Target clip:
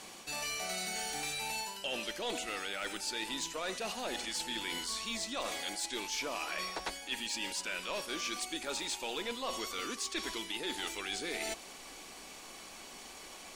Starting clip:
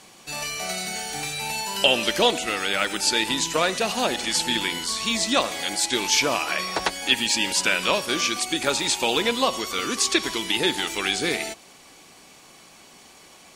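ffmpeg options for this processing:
-af "areverse,acompressor=threshold=-34dB:ratio=6,areverse,equalizer=f=130:w=1.9:g=-7.5,asoftclip=type=tanh:threshold=-27.5dB,asubboost=boost=2.5:cutoff=52"

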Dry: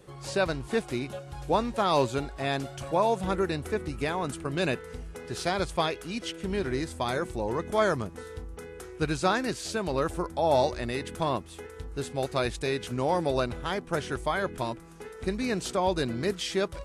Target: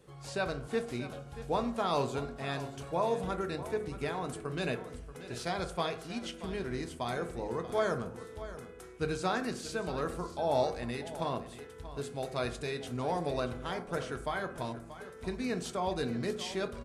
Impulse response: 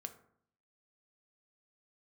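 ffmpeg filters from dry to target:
-filter_complex "[0:a]aecho=1:1:632:0.2[a];[1:a]atrim=start_sample=2205[b];[a][b]afir=irnorm=-1:irlink=0,volume=-2.5dB"

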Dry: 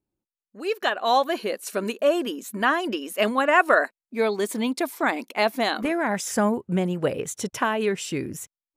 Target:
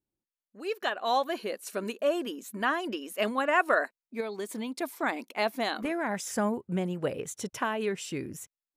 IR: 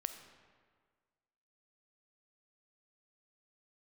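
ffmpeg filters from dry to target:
-filter_complex "[0:a]asettb=1/sr,asplit=3[a][b][c];[a]atrim=end=4.204[d];[b]atrim=start=4.2:end=4.82,asetpts=PTS-STARTPTS,afade=t=in:d=0.004:c=qsin,afade=t=out:st=0.616:d=0.004:c=qsin,acompressor=threshold=-25dB:ratio=6[e];[c]atrim=start=4.816[f];[d][e]acrossfade=d=0.004:c1=hsin:c2=qsin[g];[g][f]acrossfade=d=0.004:c1=qsin:c2=hsin,volume=-6.5dB"

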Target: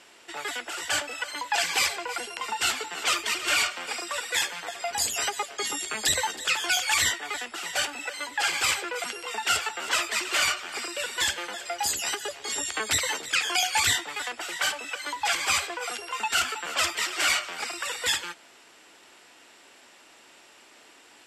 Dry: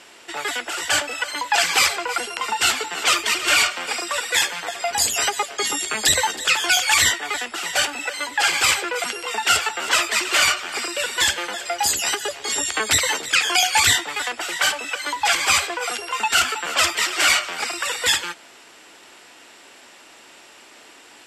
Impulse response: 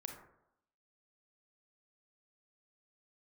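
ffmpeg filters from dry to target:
-filter_complex "[0:a]asettb=1/sr,asplit=3[a][b][c];[a]atrim=end=1.564[d];[b]atrim=start=1.56:end=2.49,asetpts=PTS-STARTPTS,afade=t=in:d=0.004:c=qsin,afade=t=out:st=0.926:d=0.004:c=qsin,bandreject=f=1.3k:w=7.6[e];[c]atrim=start=2.486[f];[d][e]acrossfade=d=0.004:c1=hsin:c2=qsin[g];[g][f]acrossfade=d=0.004:c1=qsin:c2=hsin,volume=-7dB"

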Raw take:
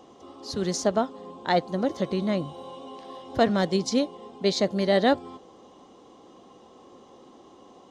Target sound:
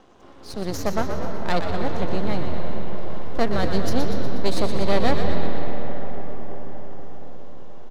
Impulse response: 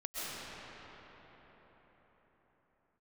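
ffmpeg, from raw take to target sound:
-filter_complex "[0:a]aeval=exprs='max(val(0),0)':c=same,asplit=9[a][b][c][d][e][f][g][h][i];[b]adelay=121,afreqshift=-82,volume=-7.5dB[j];[c]adelay=242,afreqshift=-164,volume=-12.1dB[k];[d]adelay=363,afreqshift=-246,volume=-16.7dB[l];[e]adelay=484,afreqshift=-328,volume=-21.2dB[m];[f]adelay=605,afreqshift=-410,volume=-25.8dB[n];[g]adelay=726,afreqshift=-492,volume=-30.4dB[o];[h]adelay=847,afreqshift=-574,volume=-35dB[p];[i]adelay=968,afreqshift=-656,volume=-39.6dB[q];[a][j][k][l][m][n][o][p][q]amix=inputs=9:normalize=0,asplit=2[r][s];[1:a]atrim=start_sample=2205,asetrate=33957,aresample=44100,lowpass=5.5k[t];[s][t]afir=irnorm=-1:irlink=0,volume=-9dB[u];[r][u]amix=inputs=2:normalize=0"

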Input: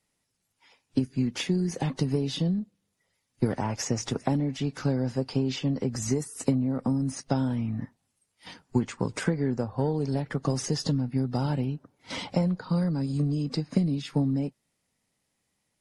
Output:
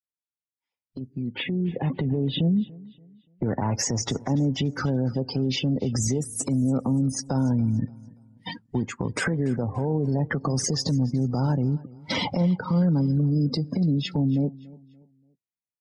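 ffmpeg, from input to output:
-filter_complex "[0:a]asettb=1/sr,asplit=3[a][b][c];[a]atrim=end=1.214[d];[b]atrim=start=1.21:end=3.6,asetpts=PTS-STARTPTS,afade=t=in:d=0.004:c=qsin,afade=t=out:st=2.386:d=0.004:c=qsin,lowpass=f=3.4k:w=0.5412,lowpass=f=3.4k:w=1.3066[e];[c]atrim=start=3.596[f];[d][e]acrossfade=d=0.004:c1=hsin:c2=qsin[g];[g][f]acrossfade=d=0.004:c1=qsin:c2=hsin,afftdn=nr=33:nf=-40,highpass=79,lowshelf=f=100:g=7.5,acompressor=threshold=-35dB:ratio=4,alimiter=level_in=8dB:limit=-24dB:level=0:latency=1:release=51,volume=-8dB,dynaudnorm=f=310:g=9:m=15.5dB,aecho=1:1:288|576|864:0.0841|0.0294|0.0103"

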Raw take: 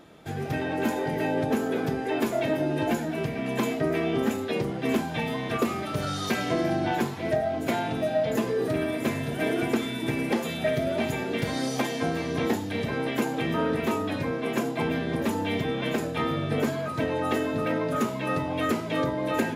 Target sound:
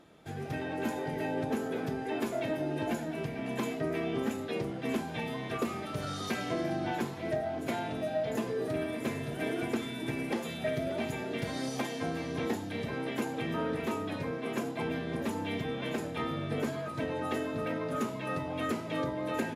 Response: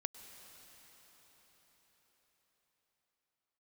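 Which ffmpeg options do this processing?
-filter_complex "[0:a]asplit=2[a][b];[b]adelay=583.1,volume=-14dB,highshelf=f=4k:g=-13.1[c];[a][c]amix=inputs=2:normalize=0[d];[1:a]atrim=start_sample=2205,atrim=end_sample=3528,asetrate=24255,aresample=44100[e];[d][e]afir=irnorm=-1:irlink=0,volume=-7.5dB"

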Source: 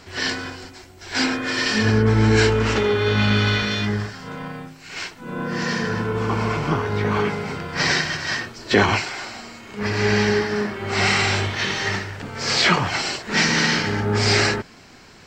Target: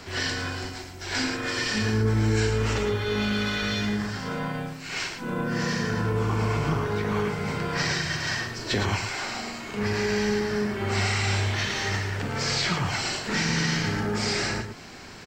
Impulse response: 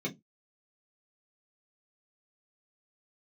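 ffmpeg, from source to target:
-filter_complex "[0:a]acrossover=split=130|7500[a][b][c];[a]acompressor=threshold=-31dB:ratio=4[d];[b]acompressor=threshold=-31dB:ratio=4[e];[c]acompressor=threshold=-43dB:ratio=4[f];[d][e][f]amix=inputs=3:normalize=0,aecho=1:1:43|110:0.282|0.422,volume=2.5dB"

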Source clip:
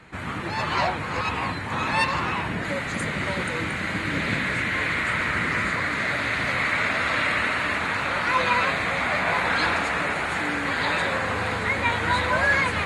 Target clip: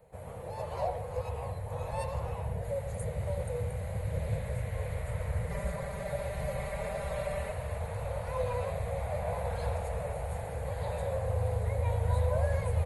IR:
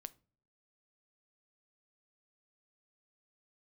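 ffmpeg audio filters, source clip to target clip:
-filter_complex "[0:a]firequalizer=gain_entry='entry(120,0);entry(310,-19);entry(480,10);entry(1300,-18);entry(3400,-16);entry(6000,-11);entry(12000,12)':delay=0.05:min_phase=1,asplit=2[a][b];[b]adelay=110,highpass=300,lowpass=3.4k,asoftclip=type=hard:threshold=-19.5dB,volume=-11dB[c];[a][c]amix=inputs=2:normalize=0,asubboost=boost=10.5:cutoff=89,asettb=1/sr,asplit=3[d][e][f];[d]atrim=end=5.494[g];[e]atrim=start=5.49:end=7.52,asetpts=PTS-STARTPTS,afade=t=in:d=0.004:c=qsin,afade=t=out:st=2.026:d=0.004:c=qsin,aecho=1:1:5.1:0.94,atrim=end_sample=89523[h];[f]atrim=start=7.516[i];[g][h]acrossfade=d=0.004:c1=hsin:c2=qsin[j];[j][i]acrossfade=d=0.004:c1=qsin:c2=hsin,volume=-8.5dB"

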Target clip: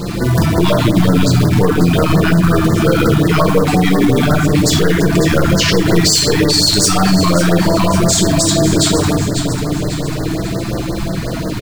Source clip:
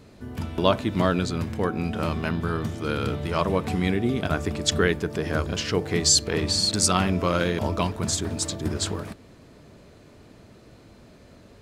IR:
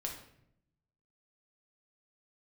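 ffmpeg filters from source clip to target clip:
-filter_complex "[0:a]asettb=1/sr,asplit=3[a][b][c];[a]atrim=end=0.844[d];[b]atrim=start=0.84:end=1.44,asetpts=PTS-STARTPTS,afade=t=in:d=0.004:c=qsin,afade=t=out:st=0.596:d=0.004:c=qsin,acrossover=split=440|3000[e][f][g];[f]acompressor=threshold=-36dB:ratio=2[h];[e][h][g]amix=inputs=3:normalize=0[i];[c]atrim=start=1.436[j];[d][i]acrossfade=d=0.004:c1=hsin:c2=qsin[k];[k][j]acrossfade=d=0.004:c1=qsin:c2=hsin,asettb=1/sr,asplit=3[l][m][n];[l]atrim=end=3.494[o];[m]atrim=start=3.49:end=4.23,asetpts=PTS-STARTPTS,afade=t=in:d=0.004:c=qsin,afade=t=out:st=0.736:d=0.004:c=qsin,lowshelf=f=85:g=-11[p];[n]atrim=start=4.226[q];[o][p]acrossfade=d=0.004:c1=hsin:c2=qsin[r];[r][q]acrossfade=d=0.004:c1=qsin:c2=hsin,asoftclip=type=tanh:threshold=-18.5dB[s];[1:a]atrim=start_sample=2205,afade=t=out:st=0.37:d=0.01,atrim=end_sample=16758[t];[s][t]afir=irnorm=-1:irlink=0,acrusher=bits=5:mode=log:mix=0:aa=0.000001,flanger=delay=5.8:depth=1.1:regen=29:speed=0.37:shape=triangular,acompressor=threshold=-46dB:ratio=2.5,aecho=1:1:546|1092|1638|2184|2730:0.266|0.122|0.0563|0.0259|0.0119,alimiter=level_in=35dB:limit=-1dB:release=50:level=0:latency=1,afftfilt=real='re*(1-between(b*sr/1024,440*pow(3000/440,0.5+0.5*sin(2*PI*5.6*pts/sr))/1.41,440*pow(3000/440,0.5+0.5*sin(2*PI*5.6*pts/sr))*1.41))':imag='im*(1-between(b*sr/1024,440*pow(3000/440,0.5+0.5*sin(2*PI*5.6*pts/sr))/1.41,440*pow(3000/440,0.5+0.5*sin(2*PI*5.6*pts/sr))*1.41))':win_size=1024:overlap=0.75,volume=-1.5dB"

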